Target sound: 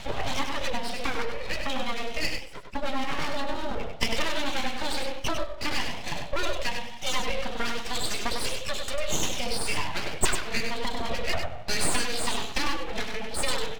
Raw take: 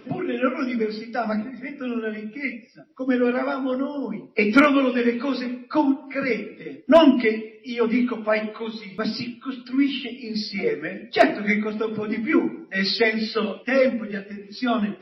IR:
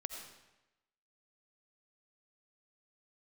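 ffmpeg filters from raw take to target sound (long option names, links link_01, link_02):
-af "acompressor=threshold=-33dB:ratio=6,lowpass=frequency=3500:width_type=q:width=4.8,aeval=exprs='abs(val(0))':channel_layout=same,aecho=1:1:107:0.501,asetrate=48000,aresample=44100,volume=7.5dB"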